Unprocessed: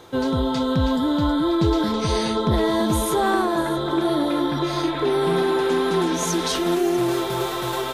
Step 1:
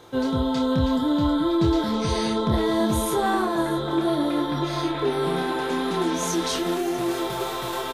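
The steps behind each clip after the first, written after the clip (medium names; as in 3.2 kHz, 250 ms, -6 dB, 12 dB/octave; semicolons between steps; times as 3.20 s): doubling 27 ms -5.5 dB; trim -3.5 dB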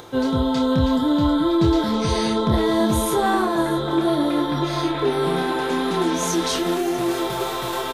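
upward compressor, threshold -40 dBFS; trim +3 dB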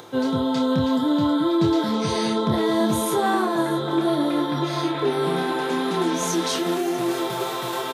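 high-pass 110 Hz 24 dB/octave; trim -1.5 dB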